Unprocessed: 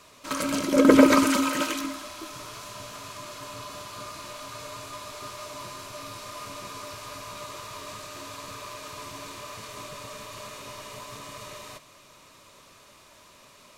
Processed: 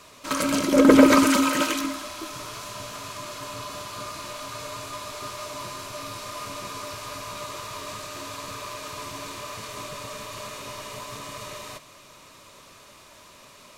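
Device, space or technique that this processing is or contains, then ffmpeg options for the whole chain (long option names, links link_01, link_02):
parallel distortion: -filter_complex "[0:a]asplit=2[link_01][link_02];[link_02]asoftclip=type=hard:threshold=-19.5dB,volume=-5.5dB[link_03];[link_01][link_03]amix=inputs=2:normalize=0"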